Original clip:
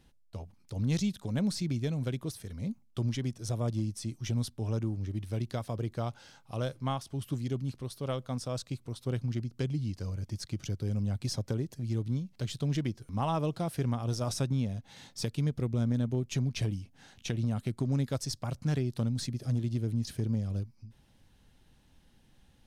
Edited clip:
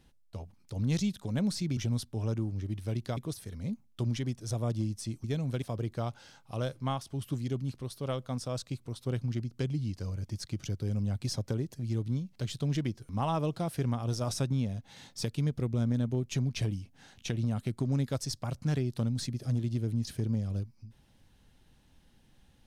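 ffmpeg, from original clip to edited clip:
-filter_complex "[0:a]asplit=5[a][b][c][d][e];[a]atrim=end=1.772[f];[b]atrim=start=4.218:end=5.622[g];[c]atrim=start=2.148:end=4.222[h];[d]atrim=start=1.768:end=2.152[i];[e]atrim=start=5.618[j];[f][g]acrossfade=d=0.004:c1=hsin:c2=hsin[k];[k][h]acrossfade=d=0.004:c1=hsin:c2=hsin[l];[l][i]acrossfade=d=0.004:c1=hsin:c2=hsin[m];[m][j]acrossfade=d=0.004:c1=hsin:c2=hsin"

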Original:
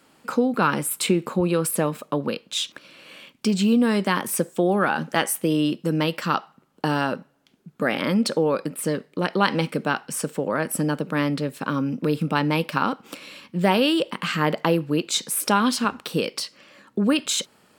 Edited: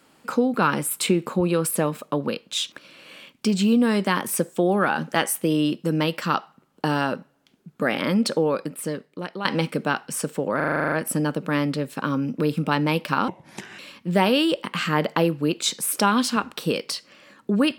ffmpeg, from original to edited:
-filter_complex "[0:a]asplit=13[a][b][c][d][e][f][g][h][i][j][k][l][m];[a]atrim=end=9.45,asetpts=PTS-STARTPTS,afade=t=out:st=8.38:d=1.07:silence=0.251189[n];[b]atrim=start=9.45:end=10.602,asetpts=PTS-STARTPTS,afade=t=in:d=0.004:c=hsin:silence=0.251189[o];[c]atrim=start=10.558:end=10.602[p];[d]atrim=start=10.558:end=10.602[q];[e]atrim=start=10.558:end=10.602[r];[f]atrim=start=10.558:end=10.602[s];[g]atrim=start=10.558:end=10.602[t];[h]atrim=start=10.558:end=10.602[u];[i]atrim=start=10.558:end=10.602[v];[j]atrim=start=10.558:end=10.602[w];[k]atrim=start=10.558:end=12.924[x];[l]atrim=start=12.92:end=13.27,asetpts=PTS-STARTPTS,asetrate=30429,aresample=44100[y];[m]atrim=start=13.266[z];[n][o]concat=n=2:v=0:a=1[aa];[aa][p]acrossfade=d=0.004:c1=hsin:c2=hsin[ab];[ab][q]acrossfade=d=0.004:c1=hsin:c2=hsin[ac];[ac][r]acrossfade=d=0.004:c1=hsin:c2=hsin[ad];[ad][s]acrossfade=d=0.004:c1=hsin:c2=hsin[ae];[ae][t]acrossfade=d=0.004:c1=hsin:c2=hsin[af];[af][u]acrossfade=d=0.004:c1=hsin:c2=hsin[ag];[ag][v]acrossfade=d=0.004:c1=hsin:c2=hsin[ah];[ah][w]acrossfade=d=0.004:c1=hsin:c2=hsin[ai];[ai][x]acrossfade=d=0.004:c1=hsin:c2=hsin[aj];[aj][y]acrossfade=d=0.004:c1=hsin:c2=hsin[ak];[ak][z]acrossfade=d=0.004:c1=hsin:c2=hsin"

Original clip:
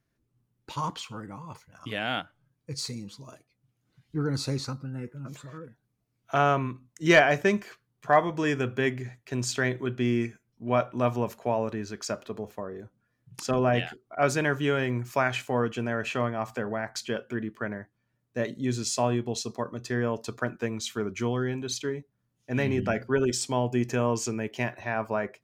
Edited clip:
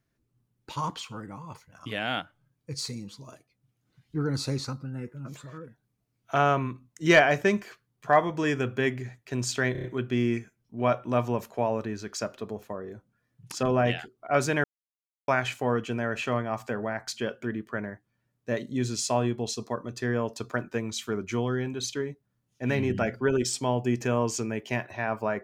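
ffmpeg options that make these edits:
-filter_complex "[0:a]asplit=7[a][b][c][d][e][f][g];[a]atrim=end=9.752[h];[b]atrim=start=9.718:end=9.752[i];[c]atrim=start=9.718:end=9.752[j];[d]atrim=start=9.718:end=9.752[k];[e]atrim=start=9.718:end=14.52,asetpts=PTS-STARTPTS,afade=t=out:st=4.798:d=0.004:c=hsin[l];[f]atrim=start=14.52:end=15.16,asetpts=PTS-STARTPTS,volume=0[m];[g]atrim=start=15.16,asetpts=PTS-STARTPTS,afade=t=in:d=0.004:c=hsin[n];[h][i]acrossfade=d=0.004:c1=hsin:c2=hsin[o];[o][j]acrossfade=d=0.004:c1=hsin:c2=hsin[p];[p][k]acrossfade=d=0.004:c1=hsin:c2=hsin[q];[l][m][n]concat=n=3:v=0:a=1[r];[q][r]acrossfade=d=0.004:c1=hsin:c2=hsin"

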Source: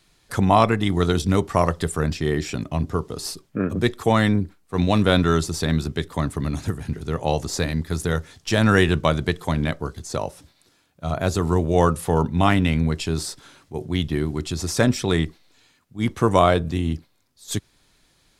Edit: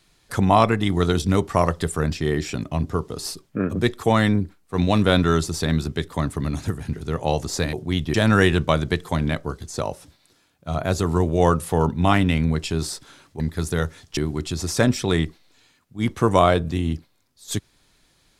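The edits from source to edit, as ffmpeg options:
-filter_complex "[0:a]asplit=5[a][b][c][d][e];[a]atrim=end=7.732[f];[b]atrim=start=13.758:end=14.172[g];[c]atrim=start=8.498:end=13.762[h];[d]atrim=start=7.728:end=8.502[i];[e]atrim=start=14.168[j];[f][g]acrossfade=d=0.004:c1=hsin:c2=hsin[k];[k][h]acrossfade=d=0.004:c1=hsin:c2=hsin[l];[l][i]acrossfade=d=0.004:c1=hsin:c2=hsin[m];[m][j]acrossfade=d=0.004:c1=hsin:c2=hsin"

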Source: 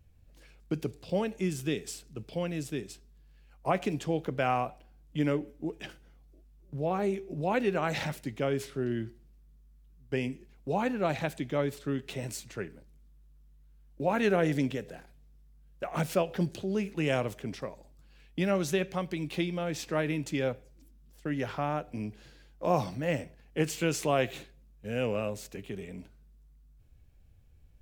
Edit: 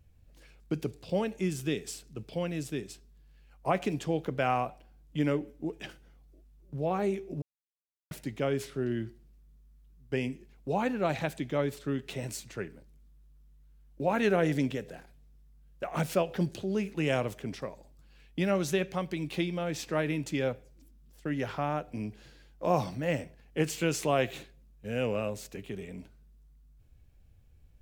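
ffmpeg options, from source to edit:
-filter_complex "[0:a]asplit=3[a][b][c];[a]atrim=end=7.42,asetpts=PTS-STARTPTS,afade=t=out:st=7.416:d=0.004:c=hsin[d];[b]atrim=start=7.42:end=8.11,asetpts=PTS-STARTPTS,volume=0[e];[c]atrim=start=8.11,asetpts=PTS-STARTPTS,afade=t=in:d=0.004:c=hsin[f];[d][e][f]concat=n=3:v=0:a=1"

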